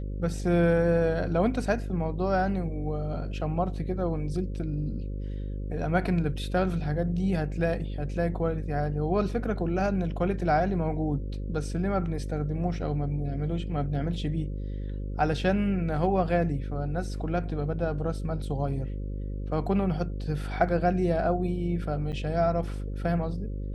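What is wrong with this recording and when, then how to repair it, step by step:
buzz 50 Hz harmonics 11 -33 dBFS
22.12–22.13 s: dropout 8.5 ms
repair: de-hum 50 Hz, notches 11; interpolate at 22.12 s, 8.5 ms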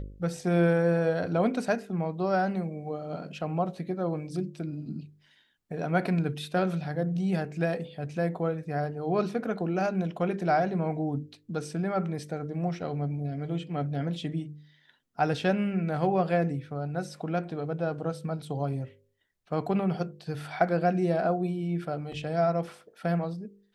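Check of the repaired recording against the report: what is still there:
nothing left

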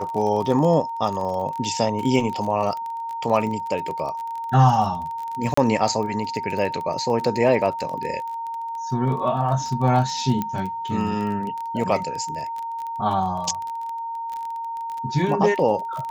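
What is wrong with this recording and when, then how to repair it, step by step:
crackle 25 per s -27 dBFS
whine 920 Hz -27 dBFS
5.54–5.57 s: dropout 34 ms
10.42 s: pop -12 dBFS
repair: de-click; band-stop 920 Hz, Q 30; interpolate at 5.54 s, 34 ms

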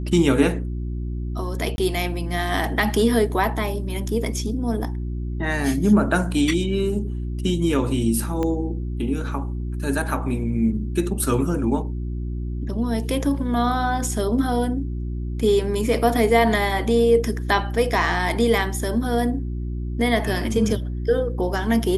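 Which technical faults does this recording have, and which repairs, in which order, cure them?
hum 60 Hz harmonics 6 -27 dBFS
1.76–1.78 s: dropout 21 ms
8.43 s: pop -14 dBFS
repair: de-click; de-hum 60 Hz, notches 6; interpolate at 1.76 s, 21 ms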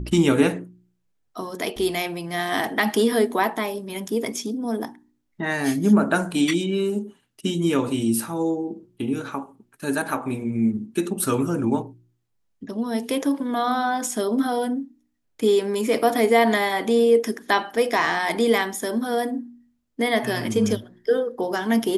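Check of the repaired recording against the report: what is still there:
8.43 s: pop

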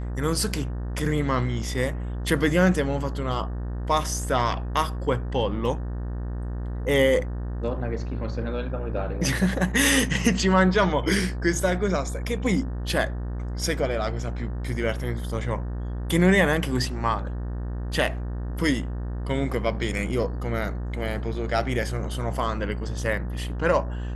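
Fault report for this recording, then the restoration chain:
buzz 60 Hz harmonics 31 -30 dBFS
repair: de-hum 60 Hz, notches 31

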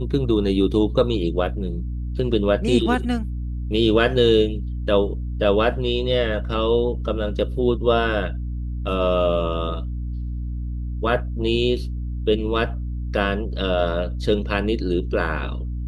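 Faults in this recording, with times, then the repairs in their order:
hum 60 Hz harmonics 5 -27 dBFS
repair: de-hum 60 Hz, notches 5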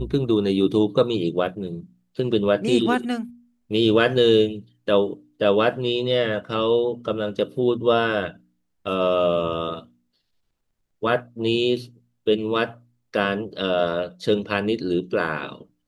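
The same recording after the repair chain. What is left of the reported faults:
nothing left

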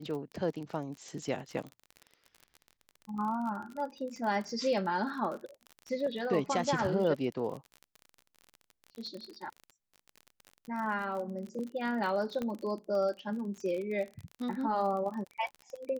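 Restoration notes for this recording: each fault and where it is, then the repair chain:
crackle 35 per s -38 dBFS
12.42 s: pop -23 dBFS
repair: de-click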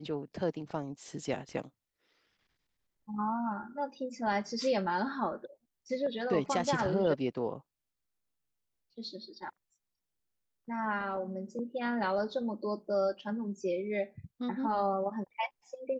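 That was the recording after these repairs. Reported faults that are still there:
12.42 s: pop

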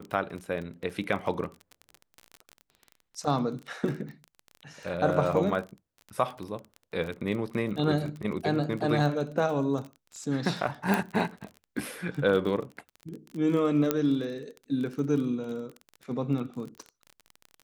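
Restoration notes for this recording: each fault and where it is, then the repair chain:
crackle 25 per s -34 dBFS
10.94 s: pop
13.91 s: pop -10 dBFS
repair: de-click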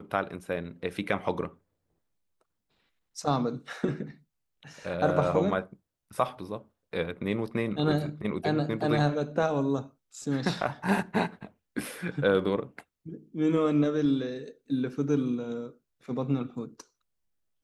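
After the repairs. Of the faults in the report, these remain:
10.94 s: pop

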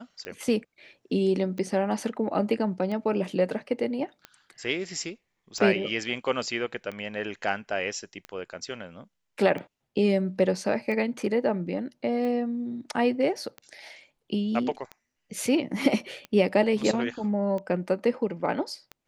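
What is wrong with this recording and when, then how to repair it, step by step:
tick 45 rpm -23 dBFS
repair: de-click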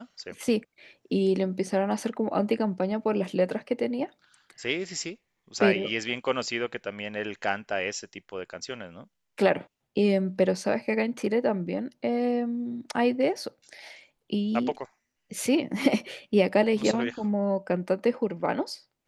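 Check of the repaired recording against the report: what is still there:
nothing left

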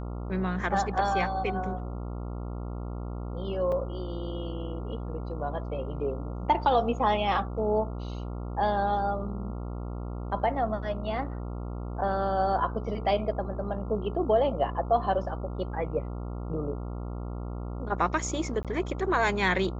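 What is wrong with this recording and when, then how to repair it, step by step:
buzz 60 Hz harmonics 23 -35 dBFS
3.72 s: dropout 4.4 ms
18.63–18.65 s: dropout 17 ms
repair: de-hum 60 Hz, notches 23; interpolate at 3.72 s, 4.4 ms; interpolate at 18.63 s, 17 ms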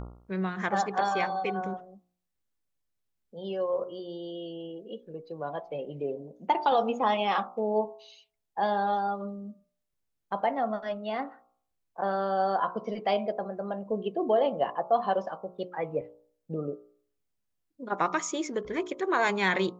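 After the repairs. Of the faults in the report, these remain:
nothing left

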